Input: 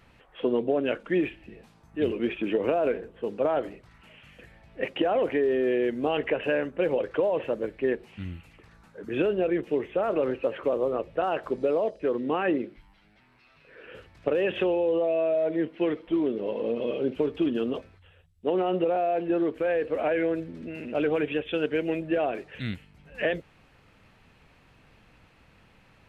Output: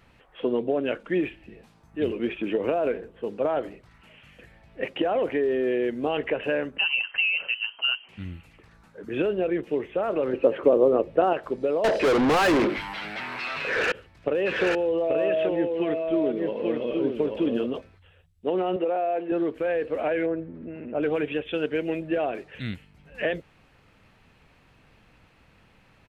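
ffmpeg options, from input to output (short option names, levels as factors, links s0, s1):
-filter_complex "[0:a]asettb=1/sr,asplit=3[s0][s1][s2];[s0]atrim=end=6.784[s3];[s1]atrim=start=6.78:end=8.09,asetpts=PTS-STARTPTS,afade=t=in:d=0.004:c=qsin,afade=t=out:st=1.306:d=0.004:c=qsin,lowpass=f=2700:t=q:w=0.5098,lowpass=f=2700:t=q:w=0.6013,lowpass=f=2700:t=q:w=0.9,lowpass=f=2700:t=q:w=2.563,afreqshift=-3200[s4];[s2]atrim=start=8.086[s5];[s3][s4]acrossfade=d=0.004:c1=hsin:c2=qsin[s6];[s6][s5]acrossfade=d=0.004:c1=qsin:c2=hsin,asettb=1/sr,asplit=3[s7][s8][s9];[s7]atrim=end=10.334[s10];[s8]atrim=start=10.33:end=11.33,asetpts=PTS-STARTPTS,afade=t=in:d=0.004:c=qsin,afade=t=out:st=0.996:d=0.004:c=qsin,equalizer=f=340:w=0.54:g=9[s11];[s9]atrim=start=11.326[s12];[s10][s11]acrossfade=d=0.004:c1=hsin:c2=qsin[s13];[s13][s12]acrossfade=d=0.004:c1=qsin:c2=hsin,asettb=1/sr,asplit=3[s14][s15][s16];[s14]atrim=end=11.844[s17];[s15]atrim=start=11.84:end=13.92,asetpts=PTS-STARTPTS,afade=t=in:d=0.004:c=qsin,afade=t=out:st=2.076:d=0.004:c=qsin,asplit=2[s18][s19];[s19]highpass=f=720:p=1,volume=79.4,asoftclip=type=tanh:threshold=0.2[s20];[s18][s20]amix=inputs=2:normalize=0,lowpass=f=3100:p=1,volume=0.501[s21];[s16]atrim=start=13.916[s22];[s17][s21]acrossfade=d=0.004:c1=hsin:c2=qsin[s23];[s23][s22]acrossfade=d=0.004:c1=qsin:c2=hsin,asplit=3[s24][s25][s26];[s24]afade=t=out:st=14.45:d=0.02[s27];[s25]aecho=1:1:832:0.668,afade=t=in:st=14.45:d=0.02,afade=t=out:st=17.65:d=0.02[s28];[s26]afade=t=in:st=17.65:d=0.02[s29];[s27][s28][s29]amix=inputs=3:normalize=0,asettb=1/sr,asplit=3[s30][s31][s32];[s30]atrim=end=18.764[s33];[s31]atrim=start=18.76:end=19.32,asetpts=PTS-STARTPTS,afade=t=in:d=0.004:c=qsin,afade=t=out:st=0.556:d=0.004:c=qsin,highpass=280,lowpass=3200[s34];[s32]atrim=start=19.316[s35];[s33][s34]acrossfade=d=0.004:c1=hsin:c2=qsin[s36];[s36][s35]acrossfade=d=0.004:c1=qsin:c2=hsin,asettb=1/sr,asplit=3[s37][s38][s39];[s37]atrim=end=20.264[s40];[s38]atrim=start=20.26:end=21.03,asetpts=PTS-STARTPTS,afade=t=in:d=0.004:c=qsin,afade=t=out:st=0.766:d=0.004:c=qsin,lowpass=1500[s41];[s39]atrim=start=21.026[s42];[s40][s41]acrossfade=d=0.004:c1=hsin:c2=qsin[s43];[s43][s42]acrossfade=d=0.004:c1=qsin:c2=hsin"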